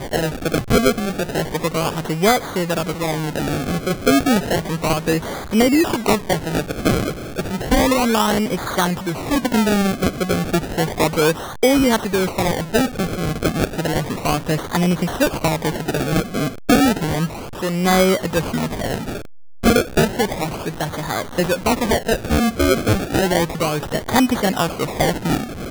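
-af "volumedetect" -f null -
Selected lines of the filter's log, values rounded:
mean_volume: -19.1 dB
max_volume: -3.9 dB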